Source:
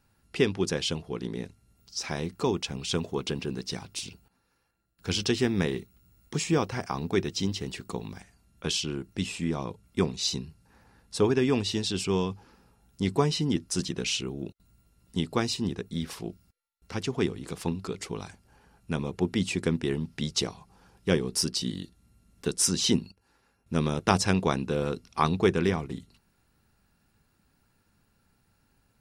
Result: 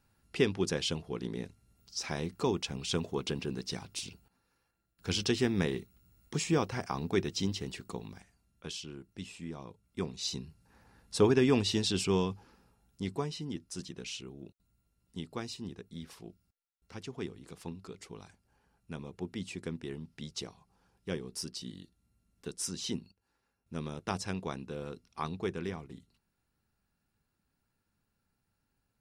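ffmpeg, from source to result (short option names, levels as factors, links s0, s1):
-af "volume=2.51,afade=t=out:st=7.49:d=1.24:silence=0.354813,afade=t=in:st=9.84:d=1.35:silence=0.266073,afade=t=out:st=11.94:d=1.37:silence=0.281838"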